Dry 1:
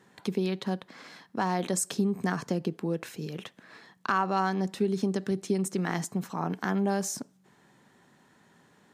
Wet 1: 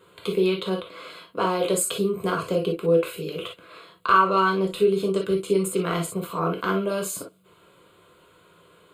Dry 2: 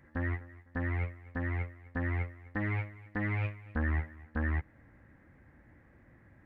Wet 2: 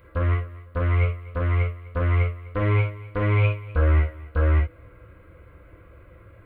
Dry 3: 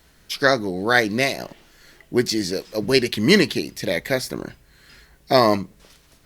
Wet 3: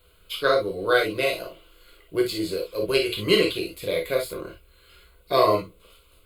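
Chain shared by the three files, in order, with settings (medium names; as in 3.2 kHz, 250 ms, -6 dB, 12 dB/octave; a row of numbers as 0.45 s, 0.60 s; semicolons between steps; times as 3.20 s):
static phaser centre 1.2 kHz, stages 8; gated-style reverb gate 80 ms flat, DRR 0 dB; normalise loudness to -24 LUFS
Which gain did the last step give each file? +8.0 dB, +12.0 dB, -3.0 dB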